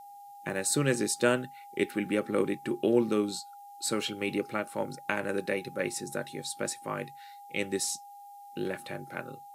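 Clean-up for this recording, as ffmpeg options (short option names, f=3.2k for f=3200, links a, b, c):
-af "bandreject=f=810:w=30,agate=range=-21dB:threshold=-41dB"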